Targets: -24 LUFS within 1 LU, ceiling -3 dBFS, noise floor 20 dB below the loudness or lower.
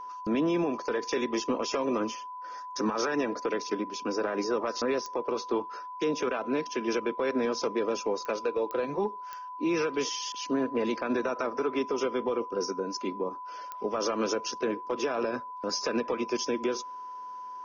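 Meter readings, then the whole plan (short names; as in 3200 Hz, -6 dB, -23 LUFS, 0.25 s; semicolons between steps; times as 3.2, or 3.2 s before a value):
clicks 5; steady tone 1000 Hz; tone level -38 dBFS; loudness -31.0 LUFS; peak -17.0 dBFS; loudness target -24.0 LUFS
-> de-click; notch 1000 Hz, Q 30; gain +7 dB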